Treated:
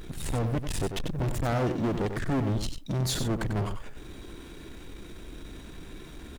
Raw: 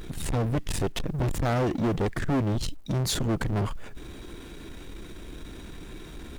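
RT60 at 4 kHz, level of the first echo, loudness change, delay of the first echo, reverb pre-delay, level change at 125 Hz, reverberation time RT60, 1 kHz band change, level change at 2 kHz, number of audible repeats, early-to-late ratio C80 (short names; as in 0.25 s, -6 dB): none, -8.0 dB, -2.0 dB, 94 ms, none, -1.5 dB, none, -2.0 dB, -2.0 dB, 1, none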